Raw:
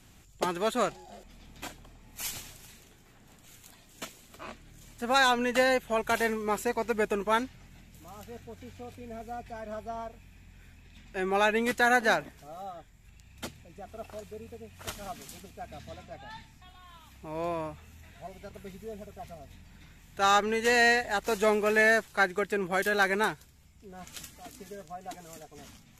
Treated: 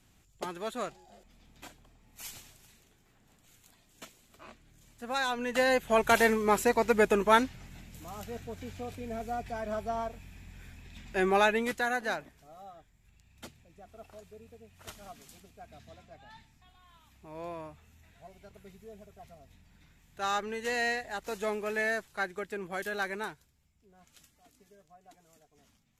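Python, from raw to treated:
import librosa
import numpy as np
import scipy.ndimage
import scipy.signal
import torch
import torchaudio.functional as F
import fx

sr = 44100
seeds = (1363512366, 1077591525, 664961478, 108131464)

y = fx.gain(x, sr, db=fx.line((5.28, -8.0), (5.98, 4.0), (11.22, 4.0), (11.93, -8.0), (22.99, -8.0), (24.1, -16.0)))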